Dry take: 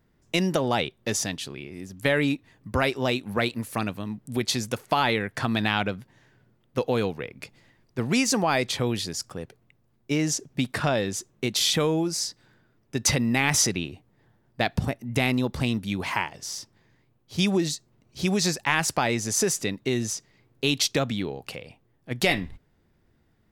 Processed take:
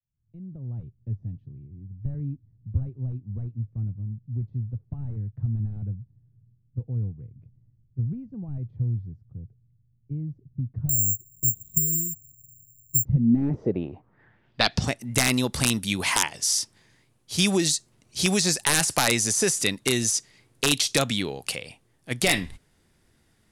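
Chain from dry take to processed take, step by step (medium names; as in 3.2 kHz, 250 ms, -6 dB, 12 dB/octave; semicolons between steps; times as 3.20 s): fade-in on the opening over 1.09 s; de-esser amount 65%; treble shelf 2 kHz +10.5 dB; integer overflow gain 9.5 dB; low-pass sweep 110 Hz -> 10 kHz, 12.99–15.05 s; 10.89–13.05 s: careless resampling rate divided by 6×, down none, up zero stuff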